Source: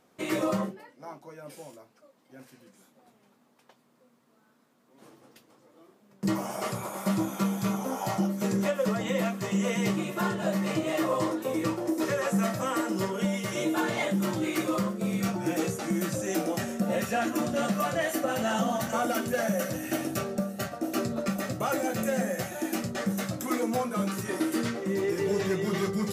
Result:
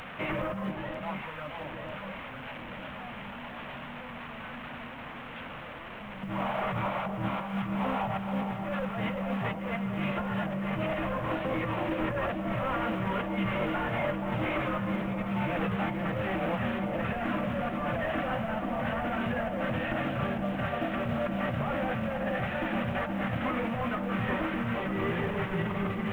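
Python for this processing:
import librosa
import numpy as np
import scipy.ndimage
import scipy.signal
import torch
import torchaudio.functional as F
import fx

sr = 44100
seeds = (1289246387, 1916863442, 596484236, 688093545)

y = fx.delta_mod(x, sr, bps=16000, step_db=-40.5)
y = fx.peak_eq(y, sr, hz=360.0, db=-14.5, octaves=0.89)
y = fx.over_compress(y, sr, threshold_db=-37.0, ratio=-1.0)
y = fx.quant_companded(y, sr, bits=8)
y = fx.echo_alternate(y, sr, ms=472, hz=1000.0, feedback_pct=74, wet_db=-5)
y = y * 10.0 ** (4.5 / 20.0)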